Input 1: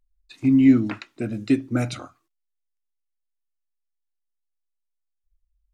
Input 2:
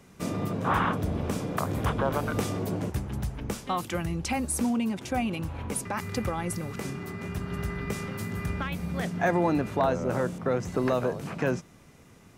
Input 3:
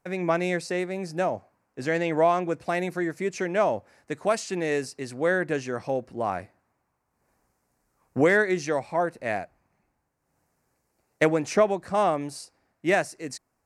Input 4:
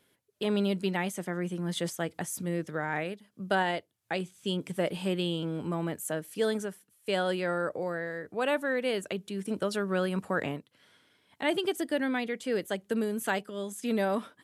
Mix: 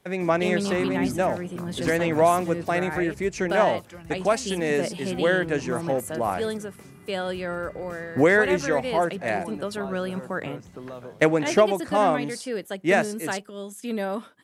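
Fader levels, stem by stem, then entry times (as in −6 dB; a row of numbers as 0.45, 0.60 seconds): −13.0, −12.5, +2.0, 0.0 decibels; 0.35, 0.00, 0.00, 0.00 seconds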